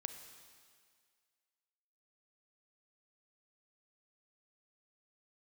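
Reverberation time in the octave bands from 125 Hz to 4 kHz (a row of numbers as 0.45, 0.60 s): 1.7, 1.8, 1.9, 1.9, 2.0, 2.0 s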